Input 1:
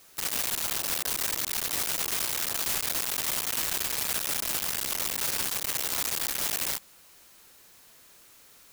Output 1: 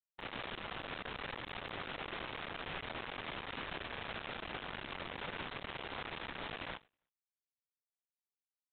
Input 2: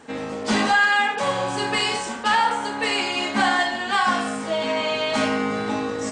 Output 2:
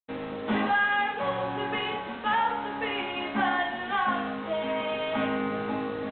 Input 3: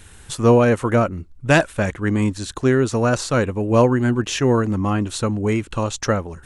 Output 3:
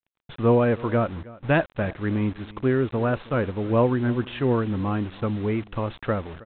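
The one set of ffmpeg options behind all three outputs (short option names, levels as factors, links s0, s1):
-af "aresample=8000,acrusher=bits=5:mix=0:aa=0.000001,aresample=44100,aecho=1:1:319:0.0944,agate=range=0.0224:threshold=0.01:ratio=3:detection=peak,aemphasis=mode=reproduction:type=75kf,volume=0.562"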